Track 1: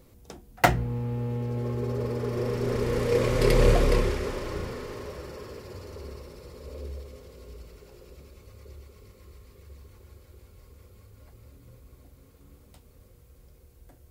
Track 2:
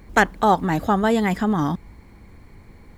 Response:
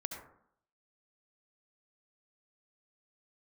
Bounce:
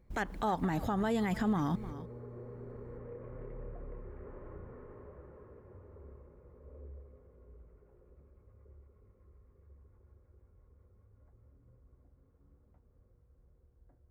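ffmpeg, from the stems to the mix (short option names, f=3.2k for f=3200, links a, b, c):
-filter_complex "[0:a]lowpass=f=1.7k:w=0.5412,lowpass=f=1.7k:w=1.3066,aemphasis=mode=reproduction:type=75kf,acompressor=threshold=-31dB:ratio=6,volume=-13.5dB[a];[1:a]agate=range=-21dB:threshold=-39dB:ratio=16:detection=peak,alimiter=limit=-13dB:level=0:latency=1:release=111,volume=-5dB,asplit=2[b][c];[c]volume=-19.5dB,aecho=0:1:302:1[d];[a][b][d]amix=inputs=3:normalize=0,lowshelf=f=130:g=4,alimiter=limit=-23dB:level=0:latency=1:release=120"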